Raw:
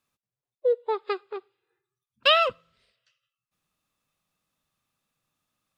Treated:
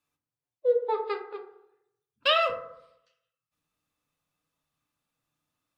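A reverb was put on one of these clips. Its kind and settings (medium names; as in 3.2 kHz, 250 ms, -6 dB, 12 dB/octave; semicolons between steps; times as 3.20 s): FDN reverb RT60 0.79 s, low-frequency decay 0.95×, high-frequency decay 0.35×, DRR 1.5 dB; trim -5 dB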